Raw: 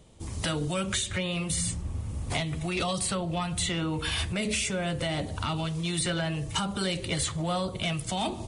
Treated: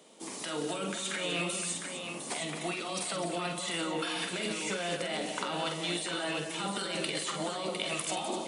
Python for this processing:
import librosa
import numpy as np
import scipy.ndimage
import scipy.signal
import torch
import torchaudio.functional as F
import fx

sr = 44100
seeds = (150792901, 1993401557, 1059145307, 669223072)

p1 = scipy.signal.sosfilt(scipy.signal.bessel(8, 340.0, 'highpass', norm='mag', fs=sr, output='sos'), x)
p2 = fx.over_compress(p1, sr, threshold_db=-36.0, ratio=-1.0)
y = p2 + fx.echo_multitap(p2, sr, ms=(46, 177, 250, 705, 763), db=(-6.5, -11.5, -9.5, -6.5, -17.5), dry=0)